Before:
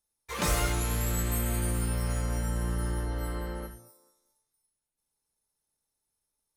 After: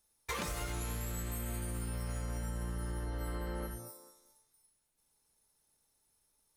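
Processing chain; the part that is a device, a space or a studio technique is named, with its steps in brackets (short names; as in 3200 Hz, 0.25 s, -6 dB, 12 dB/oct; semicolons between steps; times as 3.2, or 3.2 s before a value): serial compression, leveller first (compressor, threshold -33 dBFS, peak gain reduction 10.5 dB; compressor 6:1, threshold -43 dBFS, peak gain reduction 11 dB); gain +7.5 dB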